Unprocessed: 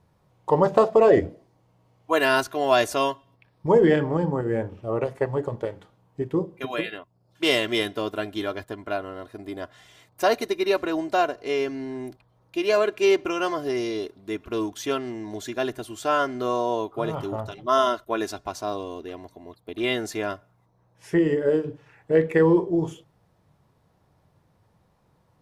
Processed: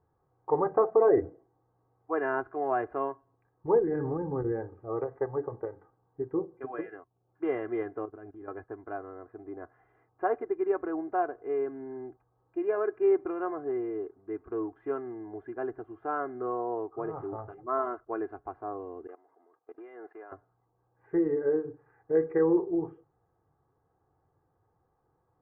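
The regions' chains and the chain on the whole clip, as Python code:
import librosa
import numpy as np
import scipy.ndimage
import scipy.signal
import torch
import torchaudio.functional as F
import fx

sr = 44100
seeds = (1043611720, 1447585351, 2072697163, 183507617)

y = fx.chain(x, sr, fx.low_shelf(hz=310.0, db=11.0),
    fx.level_steps(step_db=22), at=(3.79, 4.52))
y = fx.chain(y, sr, fx.highpass(hz=42.0, slope=12),
    fx.low_shelf(hz=290.0, db=9.0),
    fx.level_steps(step_db=19), at=(8.05, 8.48))
y = fx.chain(y, sr, fx.law_mismatch(coded='mu'),
    fx.highpass(hz=500.0, slope=12),
    fx.level_steps(step_db=19), at=(19.07, 20.32))
y = scipy.signal.sosfilt(scipy.signal.butter(6, 1600.0, 'lowpass', fs=sr, output='sos'), y)
y = fx.low_shelf(y, sr, hz=110.0, db=-7.0)
y = y + 0.63 * np.pad(y, (int(2.5 * sr / 1000.0), 0))[:len(y)]
y = y * 10.0 ** (-8.0 / 20.0)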